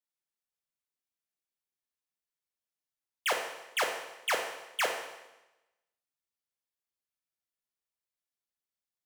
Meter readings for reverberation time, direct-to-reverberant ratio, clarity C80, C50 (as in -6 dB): 1.0 s, 1.5 dB, 7.5 dB, 5.0 dB